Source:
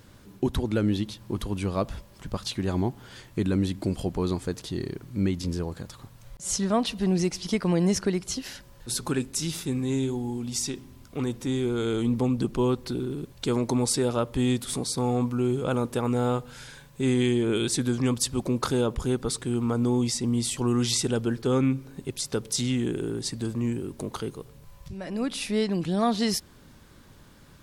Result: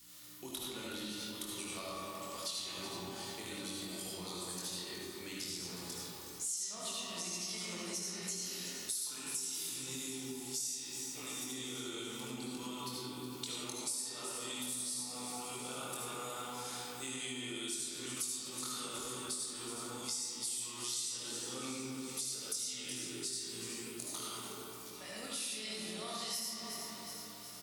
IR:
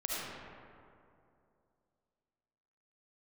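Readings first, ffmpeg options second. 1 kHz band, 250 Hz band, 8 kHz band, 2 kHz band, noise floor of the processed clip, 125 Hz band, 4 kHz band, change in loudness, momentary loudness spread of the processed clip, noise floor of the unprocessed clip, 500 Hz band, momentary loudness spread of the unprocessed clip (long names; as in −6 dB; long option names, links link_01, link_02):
−12.0 dB, −20.5 dB, −4.0 dB, −8.0 dB, −48 dBFS, −25.0 dB, −5.5 dB, −12.5 dB, 5 LU, −52 dBFS, −19.0 dB, 10 LU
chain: -filter_complex "[0:a]aeval=exprs='val(0)+0.0141*(sin(2*PI*60*n/s)+sin(2*PI*2*60*n/s)/2+sin(2*PI*3*60*n/s)/3+sin(2*PI*4*60*n/s)/4+sin(2*PI*5*60*n/s)/5)':channel_layout=same,adynamicequalizer=threshold=0.00631:dfrequency=600:dqfactor=3.6:tfrequency=600:tqfactor=3.6:attack=5:release=100:ratio=0.375:range=2.5:mode=cutabove:tftype=bell,asplit=2[link_01][link_02];[link_02]adelay=23,volume=-3dB[link_03];[link_01][link_03]amix=inputs=2:normalize=0[link_04];[1:a]atrim=start_sample=2205,asetrate=42336,aresample=44100[link_05];[link_04][link_05]afir=irnorm=-1:irlink=0,acrossover=split=240[link_06][link_07];[link_07]acompressor=threshold=-28dB:ratio=2[link_08];[link_06][link_08]amix=inputs=2:normalize=0,flanger=delay=3.6:depth=7.6:regen=-81:speed=0.79:shape=sinusoidal,aderivative,bandreject=frequency=1600:width=8.8,aecho=1:1:368|736|1104|1472|1840|2208:0.211|0.123|0.0711|0.0412|0.0239|0.0139,acompressor=threshold=-48dB:ratio=4,volume=9.5dB"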